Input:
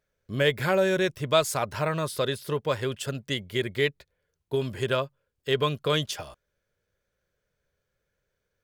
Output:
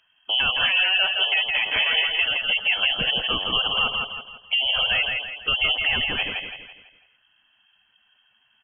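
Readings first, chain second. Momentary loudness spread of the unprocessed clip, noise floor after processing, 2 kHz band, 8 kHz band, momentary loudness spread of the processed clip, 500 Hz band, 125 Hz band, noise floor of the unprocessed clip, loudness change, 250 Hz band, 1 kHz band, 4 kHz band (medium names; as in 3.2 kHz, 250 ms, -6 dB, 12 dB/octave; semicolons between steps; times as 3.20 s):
10 LU, -65 dBFS, +11.0 dB, under -40 dB, 8 LU, -11.5 dB, -11.5 dB, -80 dBFS, +7.0 dB, -9.0 dB, +0.5 dB, +14.0 dB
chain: rattle on loud lows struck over -42 dBFS, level -32 dBFS; in parallel at +1.5 dB: peak limiter -18.5 dBFS, peak gain reduction 9.5 dB; on the sum: compression 5:1, threshold -24 dBFS, peak gain reduction 10.5 dB; saturation -22 dBFS, distortion -15 dB; on a send: feedback delay 166 ms, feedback 41%, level -4 dB; on the sum: frequency inversion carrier 3.2 kHz; spectral gate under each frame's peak -25 dB strong; trim +6.5 dB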